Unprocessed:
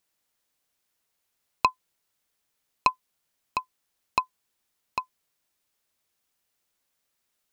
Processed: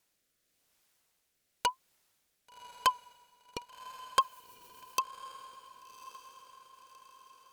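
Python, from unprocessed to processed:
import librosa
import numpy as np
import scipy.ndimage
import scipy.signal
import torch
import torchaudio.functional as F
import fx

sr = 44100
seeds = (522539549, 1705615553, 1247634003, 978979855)

p1 = fx.wow_flutter(x, sr, seeds[0], rate_hz=2.1, depth_cents=96.0)
p2 = fx.fold_sine(p1, sr, drive_db=17, ceiling_db=-3.5)
p3 = p1 + (p2 * librosa.db_to_amplitude(-9.5))
p4 = fx.riaa(p3, sr, side='recording', at=(4.21, 5.0))
p5 = fx.rotary_switch(p4, sr, hz=0.9, then_hz=8.0, switch_at_s=3.65)
p6 = p5 + fx.echo_diffused(p5, sr, ms=1132, feedback_pct=51, wet_db=-15, dry=0)
y = p6 * librosa.db_to_amplitude(-7.5)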